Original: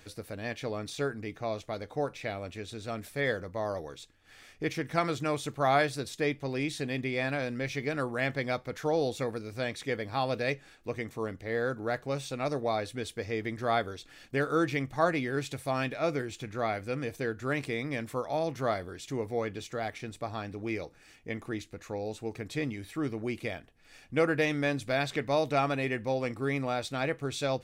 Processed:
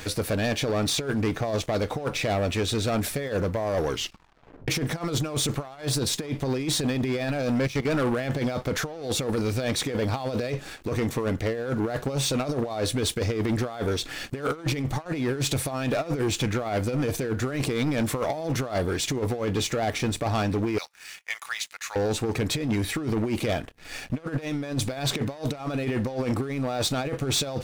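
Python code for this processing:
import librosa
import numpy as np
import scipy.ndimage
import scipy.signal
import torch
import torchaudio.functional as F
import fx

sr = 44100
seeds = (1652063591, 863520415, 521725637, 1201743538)

y = fx.level_steps(x, sr, step_db=18, at=(7.58, 8.07))
y = fx.bessel_highpass(y, sr, hz=1500.0, order=6, at=(20.78, 21.96))
y = fx.edit(y, sr, fx.tape_stop(start_s=3.88, length_s=0.8), tone=tone)
y = fx.dynamic_eq(y, sr, hz=2000.0, q=1.4, threshold_db=-47.0, ratio=4.0, max_db=-7)
y = fx.over_compress(y, sr, threshold_db=-36.0, ratio=-0.5)
y = fx.leveller(y, sr, passes=3)
y = y * librosa.db_to_amplitude(2.0)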